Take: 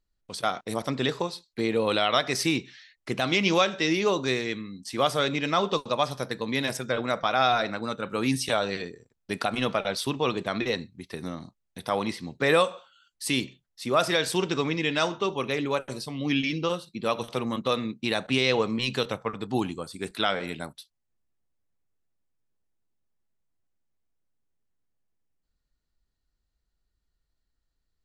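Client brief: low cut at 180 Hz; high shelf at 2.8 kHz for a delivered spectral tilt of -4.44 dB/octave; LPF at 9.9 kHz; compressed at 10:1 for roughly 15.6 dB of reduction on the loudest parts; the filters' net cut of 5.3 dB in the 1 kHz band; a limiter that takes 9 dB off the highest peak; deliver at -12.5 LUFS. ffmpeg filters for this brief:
-af "highpass=180,lowpass=9900,equalizer=f=1000:t=o:g=-6.5,highshelf=f=2800:g=-6.5,acompressor=threshold=0.0158:ratio=10,volume=29.9,alimiter=limit=0.944:level=0:latency=1"

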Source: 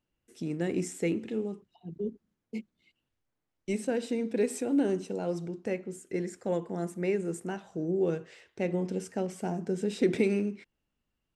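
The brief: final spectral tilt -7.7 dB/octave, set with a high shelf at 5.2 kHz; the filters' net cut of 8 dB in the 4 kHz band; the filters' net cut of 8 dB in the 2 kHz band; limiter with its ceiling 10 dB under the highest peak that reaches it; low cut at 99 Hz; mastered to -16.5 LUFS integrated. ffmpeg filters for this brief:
-af "highpass=99,equalizer=f=2000:t=o:g=-7.5,equalizer=f=4000:t=o:g=-6,highshelf=f=5200:g=-4.5,volume=10,alimiter=limit=0.501:level=0:latency=1"

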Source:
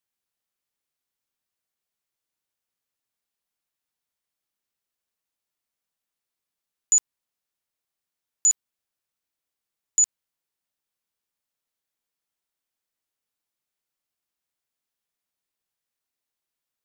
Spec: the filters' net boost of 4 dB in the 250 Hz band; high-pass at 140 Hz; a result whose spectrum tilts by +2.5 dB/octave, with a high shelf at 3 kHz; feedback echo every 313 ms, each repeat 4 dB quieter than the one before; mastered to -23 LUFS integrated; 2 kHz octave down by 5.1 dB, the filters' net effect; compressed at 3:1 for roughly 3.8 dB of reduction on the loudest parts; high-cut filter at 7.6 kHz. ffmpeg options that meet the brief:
-af "highpass=140,lowpass=7600,equalizer=f=250:t=o:g=6,equalizer=f=2000:t=o:g=-4,highshelf=f=3000:g=-6.5,acompressor=threshold=0.0398:ratio=3,aecho=1:1:313|626|939|1252|1565|1878|2191|2504|2817:0.631|0.398|0.25|0.158|0.0994|0.0626|0.0394|0.0249|0.0157,volume=4.22"

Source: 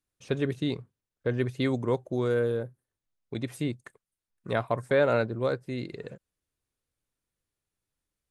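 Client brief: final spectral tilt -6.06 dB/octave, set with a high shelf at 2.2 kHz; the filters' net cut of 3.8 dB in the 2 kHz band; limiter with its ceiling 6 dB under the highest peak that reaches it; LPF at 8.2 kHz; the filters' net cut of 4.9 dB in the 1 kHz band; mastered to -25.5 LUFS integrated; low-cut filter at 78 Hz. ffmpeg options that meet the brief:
-af "highpass=78,lowpass=8200,equalizer=f=1000:t=o:g=-7,equalizer=f=2000:t=o:g=-5.5,highshelf=f=2200:g=6.5,volume=2.24,alimiter=limit=0.224:level=0:latency=1"

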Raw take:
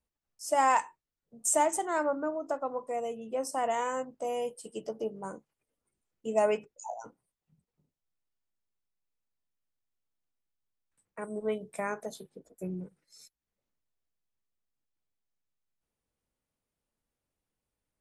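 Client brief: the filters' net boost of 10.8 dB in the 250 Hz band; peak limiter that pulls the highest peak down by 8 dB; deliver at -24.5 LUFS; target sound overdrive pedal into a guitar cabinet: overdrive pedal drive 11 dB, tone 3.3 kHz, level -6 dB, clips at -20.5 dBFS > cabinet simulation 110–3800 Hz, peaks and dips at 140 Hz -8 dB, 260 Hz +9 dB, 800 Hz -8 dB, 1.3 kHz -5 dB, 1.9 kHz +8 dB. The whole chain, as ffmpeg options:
-filter_complex "[0:a]equalizer=f=250:t=o:g=8,alimiter=limit=0.0944:level=0:latency=1,asplit=2[s0][s1];[s1]highpass=f=720:p=1,volume=3.55,asoftclip=type=tanh:threshold=0.0944[s2];[s0][s2]amix=inputs=2:normalize=0,lowpass=f=3300:p=1,volume=0.501,highpass=110,equalizer=f=140:t=q:w=4:g=-8,equalizer=f=260:t=q:w=4:g=9,equalizer=f=800:t=q:w=4:g=-8,equalizer=f=1300:t=q:w=4:g=-5,equalizer=f=1900:t=q:w=4:g=8,lowpass=f=3800:w=0.5412,lowpass=f=3800:w=1.3066,volume=2.51"

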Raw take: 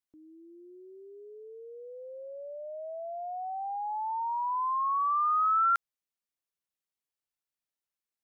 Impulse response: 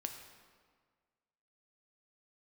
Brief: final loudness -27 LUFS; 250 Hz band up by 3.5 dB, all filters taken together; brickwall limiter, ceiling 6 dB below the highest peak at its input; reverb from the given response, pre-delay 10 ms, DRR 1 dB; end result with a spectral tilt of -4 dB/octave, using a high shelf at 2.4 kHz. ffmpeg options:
-filter_complex "[0:a]equalizer=f=250:t=o:g=6.5,highshelf=f=2400:g=-6.5,alimiter=level_in=1.68:limit=0.0631:level=0:latency=1,volume=0.596,asplit=2[s0][s1];[1:a]atrim=start_sample=2205,adelay=10[s2];[s1][s2]afir=irnorm=-1:irlink=0,volume=1.06[s3];[s0][s3]amix=inputs=2:normalize=0,volume=1.78"

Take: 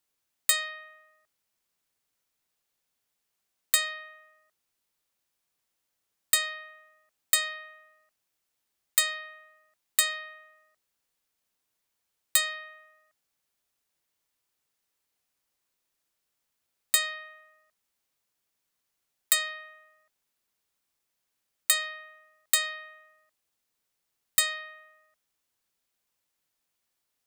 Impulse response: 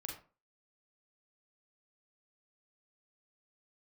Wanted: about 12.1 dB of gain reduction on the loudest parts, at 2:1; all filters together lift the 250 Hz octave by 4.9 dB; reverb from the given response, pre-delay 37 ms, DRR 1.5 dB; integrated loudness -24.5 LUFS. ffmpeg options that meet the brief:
-filter_complex "[0:a]equalizer=f=250:t=o:g=6.5,acompressor=threshold=0.00891:ratio=2,asplit=2[s0][s1];[1:a]atrim=start_sample=2205,adelay=37[s2];[s1][s2]afir=irnorm=-1:irlink=0,volume=1.06[s3];[s0][s3]amix=inputs=2:normalize=0,volume=4.47"

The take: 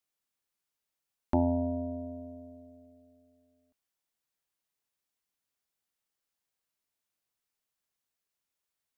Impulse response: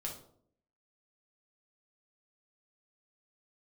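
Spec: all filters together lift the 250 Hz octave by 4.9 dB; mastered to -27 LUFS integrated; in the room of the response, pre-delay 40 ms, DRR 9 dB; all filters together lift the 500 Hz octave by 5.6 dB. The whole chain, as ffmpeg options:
-filter_complex "[0:a]equalizer=f=250:t=o:g=3.5,equalizer=f=500:t=o:g=7,asplit=2[s0][s1];[1:a]atrim=start_sample=2205,adelay=40[s2];[s1][s2]afir=irnorm=-1:irlink=0,volume=0.376[s3];[s0][s3]amix=inputs=2:normalize=0,volume=1.19"

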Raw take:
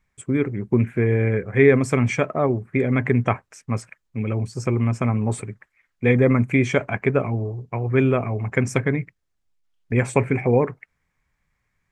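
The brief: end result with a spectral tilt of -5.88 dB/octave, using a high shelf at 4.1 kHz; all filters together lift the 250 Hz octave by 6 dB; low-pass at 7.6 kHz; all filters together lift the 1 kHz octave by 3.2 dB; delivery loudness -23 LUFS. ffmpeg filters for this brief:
-af "lowpass=7600,equalizer=f=250:t=o:g=6.5,equalizer=f=1000:t=o:g=3.5,highshelf=f=4100:g=6,volume=0.562"

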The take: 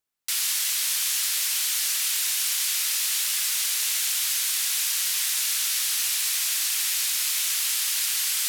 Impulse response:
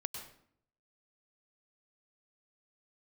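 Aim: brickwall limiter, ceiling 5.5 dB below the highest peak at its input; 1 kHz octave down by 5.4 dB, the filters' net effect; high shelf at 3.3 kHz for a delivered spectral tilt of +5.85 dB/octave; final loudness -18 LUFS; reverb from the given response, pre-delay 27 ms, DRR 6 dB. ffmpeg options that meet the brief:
-filter_complex "[0:a]equalizer=f=1000:t=o:g=-8.5,highshelf=f=3300:g=4.5,alimiter=limit=0.224:level=0:latency=1,asplit=2[s0][s1];[1:a]atrim=start_sample=2205,adelay=27[s2];[s1][s2]afir=irnorm=-1:irlink=0,volume=0.531[s3];[s0][s3]amix=inputs=2:normalize=0,volume=1.12"

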